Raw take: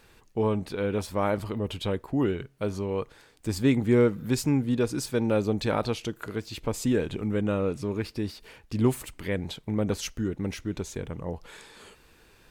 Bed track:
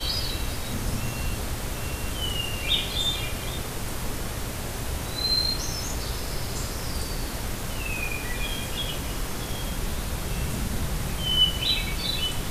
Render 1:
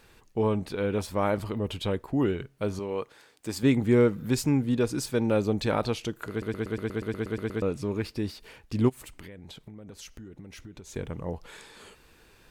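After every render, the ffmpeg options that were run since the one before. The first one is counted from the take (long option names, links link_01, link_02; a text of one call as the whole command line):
ffmpeg -i in.wav -filter_complex "[0:a]asettb=1/sr,asplit=3[link_01][link_02][link_03];[link_01]atrim=end=2.794[link_04];[link_02]atrim=start=2.79:end=3.63,asetpts=PTS-STARTPTS,afade=type=in:duration=0.004:curve=qsin,afade=type=out:start_time=0.836:duration=0.004:curve=qsin,highpass=frequency=300:poles=1[link_05];[link_03]atrim=start=3.626[link_06];[link_04][link_05]acrossfade=duration=0.004:curve1=hsin:curve2=qsin[link_07];[link_07][link_06]acrossfade=duration=0.004:curve1=qsin:curve2=hsin,asplit=3[link_08][link_09][link_10];[link_08]afade=type=out:start_time=8.88:duration=0.02[link_11];[link_09]acompressor=threshold=-40dB:ratio=16:attack=3.2:release=140:knee=1:detection=peak,afade=type=in:start_time=8.88:duration=0.02,afade=type=out:start_time=10.94:duration=0.02[link_12];[link_10]afade=type=in:start_time=10.94:duration=0.02[link_13];[link_11][link_12][link_13]amix=inputs=3:normalize=0,asplit=12[link_14][link_15][link_16][link_17][link_18][link_19][link_20][link_21][link_22][link_23][link_24][link_25];[link_14]atrim=end=6.422[link_26];[link_15]atrim=start=6.298:end=6.422[link_27];[link_16]atrim=start=6.298:end=6.422[link_28];[link_17]atrim=start=6.298:end=6.422[link_29];[link_18]atrim=start=6.298:end=6.422[link_30];[link_19]atrim=start=6.298:end=6.422[link_31];[link_20]atrim=start=6.298:end=6.422[link_32];[link_21]atrim=start=6.298:end=6.422[link_33];[link_22]atrim=start=6.298:end=6.422[link_34];[link_23]atrim=start=6.298:end=6.422[link_35];[link_24]atrim=start=6.298:end=6.422[link_36];[link_25]atrim=start=7.618[link_37];[link_26][link_27]acrossfade=duration=0.004:curve1=hsin:curve2=hsin[link_38];[link_38][link_28]acrossfade=duration=0.004:curve1=hsin:curve2=hsin[link_39];[link_39][link_29]acrossfade=duration=0.004:curve1=hsin:curve2=hsin[link_40];[link_40][link_30]acrossfade=duration=0.004:curve1=hsin:curve2=hsin[link_41];[link_41][link_31]acrossfade=duration=0.004:curve1=hsin:curve2=hsin[link_42];[link_42][link_32]acrossfade=duration=0.004:curve1=hsin:curve2=hsin[link_43];[link_43][link_33]acrossfade=duration=0.004:curve1=hsin:curve2=hsin[link_44];[link_44][link_34]acrossfade=duration=0.004:curve1=hsin:curve2=hsin[link_45];[link_45][link_35]acrossfade=duration=0.004:curve1=hsin:curve2=hsin[link_46];[link_46][link_36]acrossfade=duration=0.004:curve1=hsin:curve2=hsin[link_47];[link_47][link_37]acrossfade=duration=0.004:curve1=hsin:curve2=hsin" out.wav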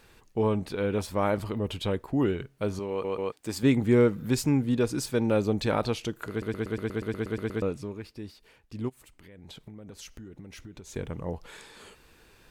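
ffmpeg -i in.wav -filter_complex "[0:a]asplit=6[link_01][link_02][link_03][link_04][link_05][link_06];[link_01]atrim=end=3.042[link_07];[link_02]atrim=start=2.898:end=3.042[link_08];[link_03]atrim=start=2.898:end=3.042[link_09];[link_04]atrim=start=3.318:end=7.96,asetpts=PTS-STARTPTS,afade=type=out:start_time=4.282:duration=0.36:silence=0.334965[link_10];[link_05]atrim=start=7.96:end=9.2,asetpts=PTS-STARTPTS,volume=-9.5dB[link_11];[link_06]atrim=start=9.2,asetpts=PTS-STARTPTS,afade=type=in:duration=0.36:silence=0.334965[link_12];[link_07][link_08]acrossfade=duration=0.004:curve1=hsin:curve2=hsin[link_13];[link_13][link_09]acrossfade=duration=0.004:curve1=hsin:curve2=hsin[link_14];[link_10][link_11][link_12]concat=n=3:v=0:a=1[link_15];[link_14][link_15]acrossfade=duration=0.004:curve1=hsin:curve2=hsin" out.wav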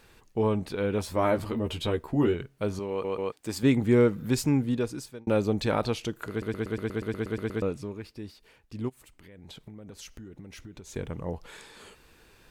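ffmpeg -i in.wav -filter_complex "[0:a]asettb=1/sr,asplit=3[link_01][link_02][link_03];[link_01]atrim=end=1.054[link_04];[link_02]atrim=start=1.05:end=2.34,asetpts=PTS-STARTPTS,afade=type=in:duration=0.004:curve=qsin,afade=type=out:start_time=1.286:duration=0.004:curve=qsin,asplit=2[link_05][link_06];[link_06]adelay=13,volume=-4.5dB[link_07];[link_05][link_07]amix=inputs=2:normalize=0,atrim=end_sample=56889[link_08];[link_03]atrim=start=2.336[link_09];[link_04][link_08]acrossfade=duration=0.004:curve1=hsin:curve2=qsin[link_10];[link_10][link_09]acrossfade=duration=0.004:curve1=qsin:curve2=hsin,asplit=2[link_11][link_12];[link_11]atrim=end=5.27,asetpts=PTS-STARTPTS,afade=type=out:start_time=4.61:duration=0.66[link_13];[link_12]atrim=start=5.27,asetpts=PTS-STARTPTS,afade=type=in:duration=0.004:curve=hsin[link_14];[link_13][link_14]concat=n=2:v=0:a=1" out.wav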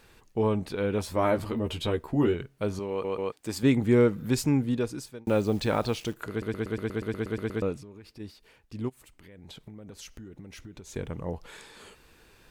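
ffmpeg -i in.wav -filter_complex "[0:a]asplit=3[link_01][link_02][link_03];[link_01]afade=type=out:start_time=5.25:duration=0.02[link_04];[link_02]acrusher=bits=9:dc=4:mix=0:aa=0.000001,afade=type=in:start_time=5.25:duration=0.02,afade=type=out:start_time=6.13:duration=0.02[link_05];[link_03]afade=type=in:start_time=6.13:duration=0.02[link_06];[link_04][link_05][link_06]amix=inputs=3:normalize=0,asplit=3[link_07][link_08][link_09];[link_07]afade=type=out:start_time=7.79:duration=0.02[link_10];[link_08]acompressor=threshold=-43dB:ratio=5:attack=3.2:release=140:knee=1:detection=peak,afade=type=in:start_time=7.79:duration=0.02,afade=type=out:start_time=8.19:duration=0.02[link_11];[link_09]afade=type=in:start_time=8.19:duration=0.02[link_12];[link_10][link_11][link_12]amix=inputs=3:normalize=0" out.wav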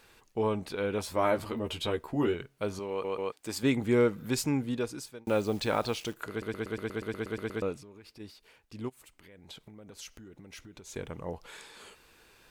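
ffmpeg -i in.wav -af "lowshelf=frequency=330:gain=-8,bandreject=frequency=1800:width=29" out.wav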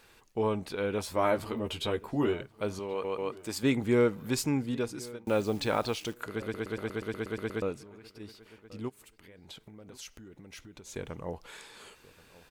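ffmpeg -i in.wav -filter_complex "[0:a]asplit=2[link_01][link_02];[link_02]adelay=1080,lowpass=frequency=2600:poles=1,volume=-20.5dB,asplit=2[link_03][link_04];[link_04]adelay=1080,lowpass=frequency=2600:poles=1,volume=0.18[link_05];[link_01][link_03][link_05]amix=inputs=3:normalize=0" out.wav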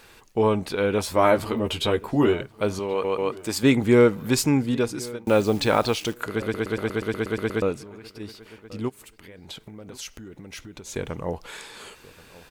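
ffmpeg -i in.wav -af "volume=8.5dB" out.wav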